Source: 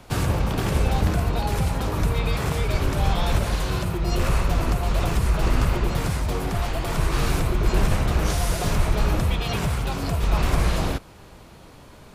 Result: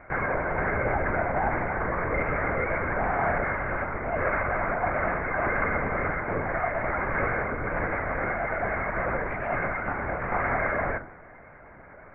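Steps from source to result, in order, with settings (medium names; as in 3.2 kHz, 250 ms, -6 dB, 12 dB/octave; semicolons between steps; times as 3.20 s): tilt EQ +4.5 dB/octave; gain riding 2 s; rippled Chebyshev low-pass 2.2 kHz, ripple 6 dB; on a send at -8 dB: reverberation RT60 0.65 s, pre-delay 4 ms; on the sum: LPC vocoder at 8 kHz whisper; trim +5.5 dB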